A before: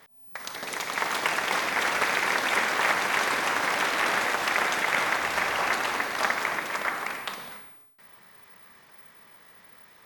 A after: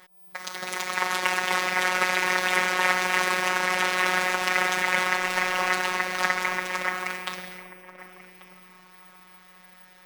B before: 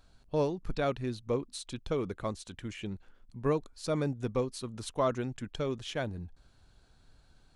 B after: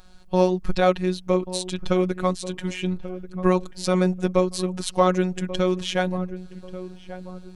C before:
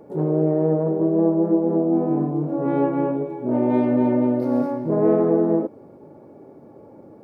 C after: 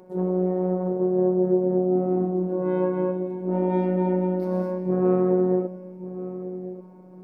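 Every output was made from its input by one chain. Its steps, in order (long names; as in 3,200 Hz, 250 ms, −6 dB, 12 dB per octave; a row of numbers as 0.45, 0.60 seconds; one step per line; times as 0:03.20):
phases set to zero 183 Hz
feedback echo with a low-pass in the loop 1,137 ms, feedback 35%, low-pass 1,100 Hz, level −13 dB
loudness normalisation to −24 LKFS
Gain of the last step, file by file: +4.0, +13.5, −1.0 decibels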